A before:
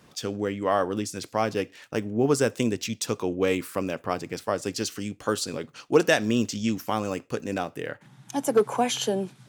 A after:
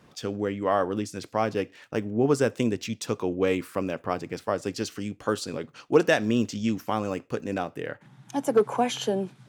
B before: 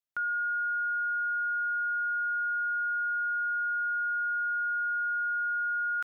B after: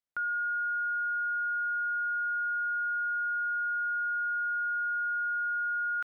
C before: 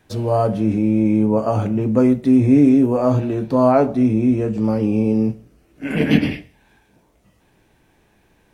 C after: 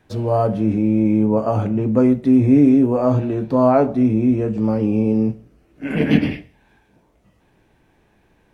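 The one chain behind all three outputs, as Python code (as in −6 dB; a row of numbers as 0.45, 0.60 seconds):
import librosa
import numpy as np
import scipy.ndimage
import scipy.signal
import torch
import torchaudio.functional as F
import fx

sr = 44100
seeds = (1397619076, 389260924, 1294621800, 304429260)

y = fx.high_shelf(x, sr, hz=4000.0, db=-8.0)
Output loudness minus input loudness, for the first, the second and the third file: −0.5, −1.0, 0.0 LU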